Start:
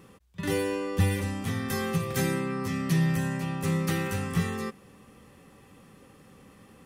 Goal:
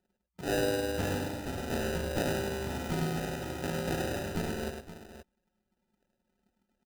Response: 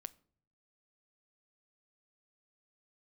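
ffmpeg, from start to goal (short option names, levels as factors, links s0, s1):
-filter_complex "[0:a]anlmdn=0.631,bass=f=250:g=-15,treble=f=4000:g=-1,acrusher=samples=40:mix=1:aa=0.000001,asplit=2[s0][s1];[s1]aecho=0:1:105|522:0.531|0.237[s2];[s0][s2]amix=inputs=2:normalize=0"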